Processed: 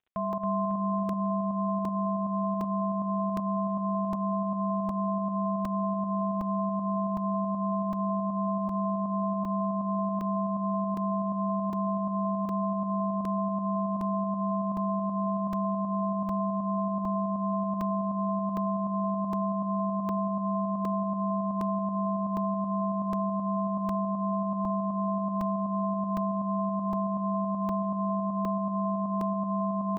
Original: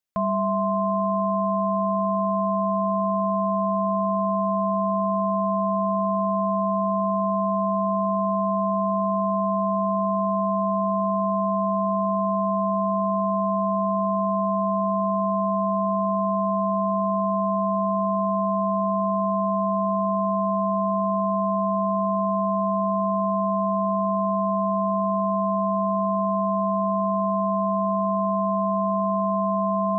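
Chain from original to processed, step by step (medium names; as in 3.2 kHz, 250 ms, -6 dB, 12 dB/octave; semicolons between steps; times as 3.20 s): crackle 75 per s -47 dBFS; volume shaper 159 bpm, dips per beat 1, -14 dB, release 119 ms; on a send: feedback delay 275 ms, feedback 58%, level -4 dB; on the sum: resampled via 8 kHz; crackling interface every 0.76 s, samples 128, zero, from 0.33 s; trim -7 dB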